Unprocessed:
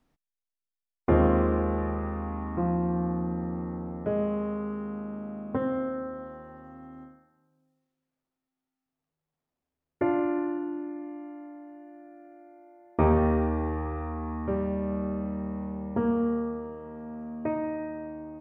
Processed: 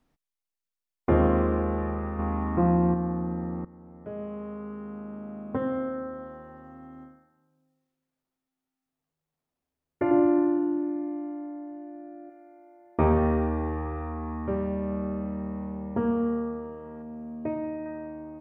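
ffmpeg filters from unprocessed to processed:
-filter_complex "[0:a]asettb=1/sr,asplit=3[a][b][c];[a]atrim=end=10.114[d];[b]atrim=start=10.11:end=12.3,asetpts=PTS-STARTPTS,afade=t=in:d=0.004:c=qsin,afade=t=out:st=2.186:d=0.004:c=qsin,tiltshelf=f=1.3k:g=7.5[e];[c]atrim=start=12.296[f];[d][e]acrossfade=d=0.004:c1=hsin:c2=qsin[g];[g][f]acrossfade=d=0.004:c1=qsin:c2=hsin,asettb=1/sr,asplit=3[h][i][j];[h]atrim=end=17.024[k];[i]atrim=start=17.02:end=17.86,asetpts=PTS-STARTPTS,afade=t=in:d=0.004:c=qsin,afade=t=out:st=0.836:d=0.004:c=qsin,equalizer=f=1.4k:t=o:w=1.4:g=-8[l];[j]atrim=start=17.856[m];[k][l]acrossfade=d=0.004:c1=hsin:c2=qsin[n];[n][m]acrossfade=d=0.004:c1=qsin:c2=hsin,asplit=4[o][p][q][r];[o]atrim=end=2.192[s];[p]atrim=start=2.188:end=2.942,asetpts=PTS-STARTPTS,volume=5dB[t];[q]atrim=start=2.938:end=3.65,asetpts=PTS-STARTPTS,afade=t=out:st=0.708:d=0.004:c=hsin:silence=0.141254[u];[r]atrim=start=3.65,asetpts=PTS-STARTPTS,afade=t=in:d=2.02:silence=0.141254[v];[s][t]acrossfade=d=0.004:c1=hsin:c2=hsin[w];[u][v]concat=n=2:v=0:a=1[x];[w][x]acrossfade=d=0.004:c1=hsin:c2=hsin"

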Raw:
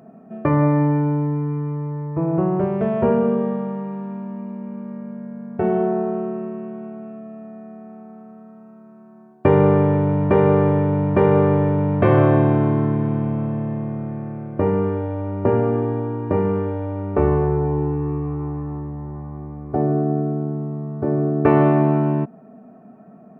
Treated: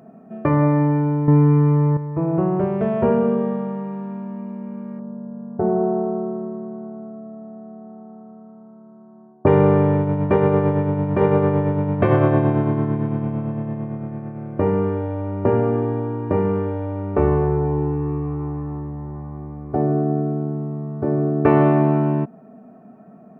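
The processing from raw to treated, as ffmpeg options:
-filter_complex "[0:a]asettb=1/sr,asplit=3[a][b][c];[a]atrim=end=4.994[d];[b]atrim=start=4.99:end=9.47,asetpts=PTS-STARTPTS,afade=t=in:d=0.004:c=qsin,afade=t=out:st=4.476:d=0.004:c=qsin,lowpass=f=1.2k:w=0.5412,lowpass=f=1.2k:w=1.3066[e];[c]atrim=start=9.466[f];[d][e]acrossfade=d=0.004:c1=hsin:c2=qsin[g];[g][f]acrossfade=d=0.004:c1=qsin:c2=hsin,asplit=3[h][i][j];[h]afade=t=out:st=9.97:d=0.02[k];[i]tremolo=f=8.9:d=0.38,afade=t=in:st=9.97:d=0.02,afade=t=out:st=14.4:d=0.02[l];[j]afade=t=in:st=14.4:d=0.02[m];[k][l][m]amix=inputs=3:normalize=0,asplit=3[n][o][p];[n]atrim=end=1.282[q];[o]atrim=start=1.278:end=1.972,asetpts=PTS-STARTPTS,volume=9.5dB[r];[p]atrim=start=1.968[s];[q][r]acrossfade=d=0.004:c1=hsin:c2=hsin[t];[t][s]acrossfade=d=0.004:c1=hsin:c2=hsin"

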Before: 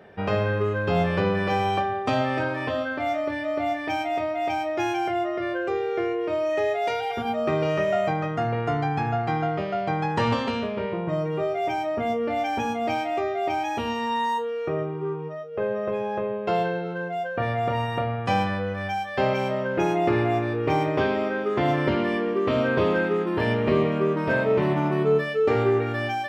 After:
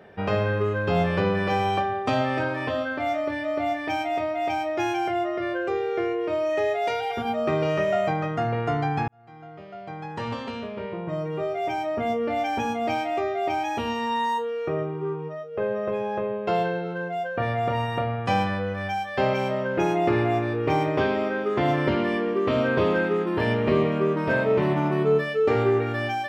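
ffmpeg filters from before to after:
-filter_complex "[0:a]asplit=2[a][b];[a]atrim=end=9.08,asetpts=PTS-STARTPTS,afade=t=out:st=9.076:d=0.004:c=hsin[c];[b]atrim=start=9.08,asetpts=PTS-STARTPTS,afade=t=in:d=3[d];[c][d]concat=n=2:v=0:a=1"

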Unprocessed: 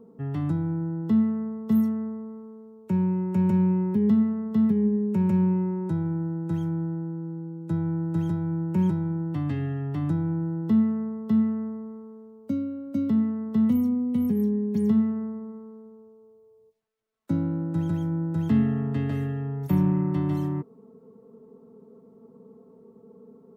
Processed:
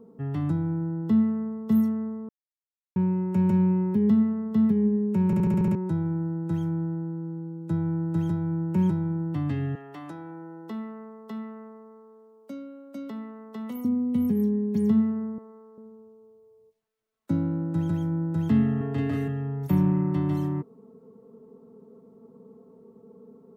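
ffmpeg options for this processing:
-filter_complex "[0:a]asettb=1/sr,asplit=3[a][b][c];[a]atrim=end=9.754[d];[b]atrim=start=9.75:end=13.85,asetpts=PTS-STARTPTS,afade=t=in:d=0.004:c=qsin,afade=t=out:st=4.096:d=0.004:c=qsin,highpass=510[e];[c]atrim=start=13.846[f];[d][e]acrossfade=d=0.004:c1=hsin:c2=qsin[g];[g][f]acrossfade=d=0.004:c1=qsin:c2=hsin,asettb=1/sr,asplit=3[h][i][j];[h]atrim=end=15.384[k];[i]atrim=start=15.38:end=15.78,asetpts=PTS-STARTPTS,afade=t=in:d=0.004:c=qsin,afade=t=out:st=0.396:d=0.004:c=qsin,highpass=460[l];[j]atrim=start=15.776[m];[k][l]acrossfade=d=0.004:c1=hsin:c2=qsin[n];[n][m]acrossfade=d=0.004:c1=qsin:c2=hsin,asettb=1/sr,asplit=3[o][p][q];[o]atrim=end=18.774[r];[p]atrim=start=18.77:end=19.28,asetpts=PTS-STARTPTS,afade=t=in:d=0.004:c=qsin,afade=t=out:st=0.506:d=0.004:c=qsin,asplit=2[s][t];[t]adelay=39,volume=-2dB[u];[s][u]amix=inputs=2:normalize=0,atrim=end_sample=22491[v];[q]atrim=start=19.276[w];[r][v]acrossfade=d=0.004:c1=hsin:c2=qsin[x];[x][w]acrossfade=d=0.004:c1=qsin:c2=hsin,asplit=10[y][z][aa][ab][ac][ad][ae][af][ag][ah];[y]atrim=end=2.29,asetpts=PTS-STARTPTS,afade=t=out:st=2.286:d=0.004:c=hsin[ai];[z]atrim=start=2.29:end=2.96,asetpts=PTS-STARTPTS,volume=0[aj];[aa]atrim=start=2.96:end=5.332,asetpts=PTS-STARTPTS,afade=t=in:d=0.004:c=hsin[ak];[ab]atrim=start=5.258:end=5.332[al];[ac]atrim=start=5.258:end=5.332[am];[ad]atrim=start=5.258:end=5.332[an];[ae]atrim=start=5.258:end=5.332[ao];[af]atrim=start=5.258:end=5.332[ap];[ag]atrim=start=5.258:end=5.332[aq];[ah]atrim=start=5.748[ar];[ai][aj][ak]concat=n=3:v=0:a=1[as];[as][al]acrossfade=d=0.004:c1=hsin:c2=hsin[at];[at][am]acrossfade=d=0.004:c1=hsin:c2=hsin[au];[au][an]acrossfade=d=0.004:c1=hsin:c2=hsin[av];[av][ao]acrossfade=d=0.004:c1=hsin:c2=hsin[aw];[aw][ap]acrossfade=d=0.004:c1=hsin:c2=hsin[ax];[ax][aq]acrossfade=d=0.004:c1=hsin:c2=hsin[ay];[ay][ar]acrossfade=d=0.004:c1=hsin:c2=hsin"

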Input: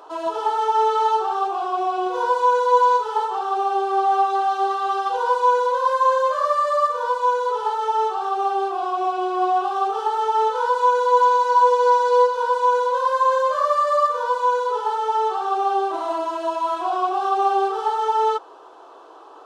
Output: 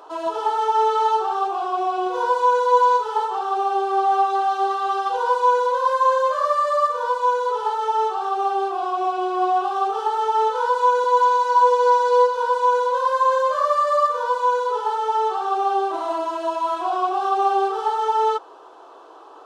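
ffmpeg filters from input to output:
-filter_complex "[0:a]asettb=1/sr,asplit=3[a][b][c];[a]atrim=end=11.044[d];[b]atrim=start=11.04:end=11.56,asetpts=PTS-STARTPTS,afade=t=in:d=0.004:c=qsin,afade=t=out:st=0.516:d=0.004:c=qsin,highpass=f=400:p=1[e];[c]atrim=start=11.556[f];[d][e]acrossfade=d=0.004:c1=hsin:c2=qsin[g];[g][f]acrossfade=d=0.004:c1=qsin:c2=hsin"

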